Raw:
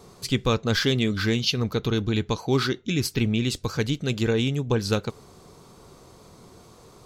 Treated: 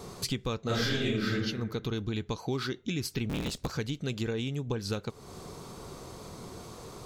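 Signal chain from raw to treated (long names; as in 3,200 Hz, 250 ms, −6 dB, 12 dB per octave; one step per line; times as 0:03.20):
0:00.62–0:01.30: thrown reverb, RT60 0.86 s, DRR −11.5 dB
0:03.29–0:03.73: sub-harmonics by changed cycles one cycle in 3, inverted
downward compressor 4 to 1, threshold −37 dBFS, peak gain reduction 23 dB
level +5 dB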